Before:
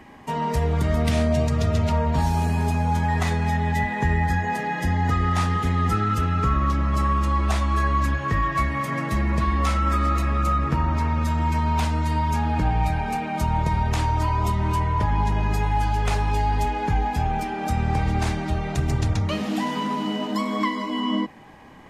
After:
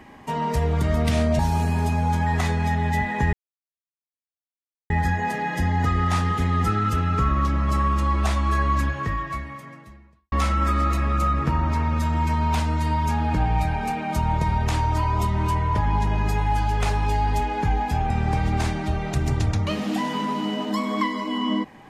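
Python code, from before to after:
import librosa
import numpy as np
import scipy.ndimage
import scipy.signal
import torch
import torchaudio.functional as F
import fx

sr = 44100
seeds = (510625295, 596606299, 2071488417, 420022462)

y = fx.edit(x, sr, fx.cut(start_s=1.39, length_s=0.82),
    fx.insert_silence(at_s=4.15, length_s=1.57),
    fx.fade_out_span(start_s=8.07, length_s=1.5, curve='qua'),
    fx.cut(start_s=17.35, length_s=0.37), tone=tone)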